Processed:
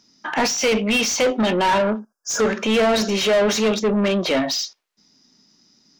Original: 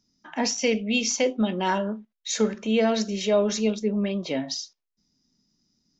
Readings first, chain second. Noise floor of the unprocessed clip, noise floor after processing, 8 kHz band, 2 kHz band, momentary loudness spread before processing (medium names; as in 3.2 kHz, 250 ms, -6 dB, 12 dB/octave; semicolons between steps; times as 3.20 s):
-83 dBFS, -73 dBFS, no reading, +9.0 dB, 10 LU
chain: spectral selection erased 1.99–2.40 s, 1.7–4.8 kHz; overdrive pedal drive 26 dB, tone 3.2 kHz, clips at -10.5 dBFS